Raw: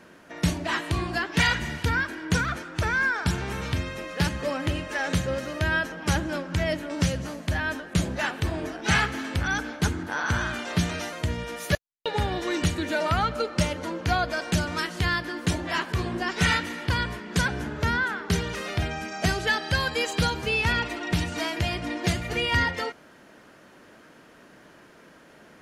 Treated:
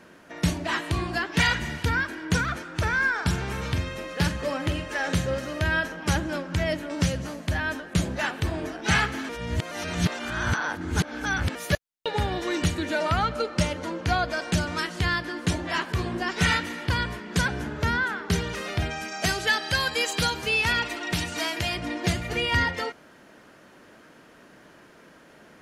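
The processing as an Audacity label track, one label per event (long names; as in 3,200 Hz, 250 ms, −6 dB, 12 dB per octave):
2.640000	6.020000	double-tracking delay 47 ms −12 dB
9.290000	11.550000	reverse
12.860000	15.860000	low-pass filter 12,000 Hz
18.900000	21.770000	spectral tilt +1.5 dB per octave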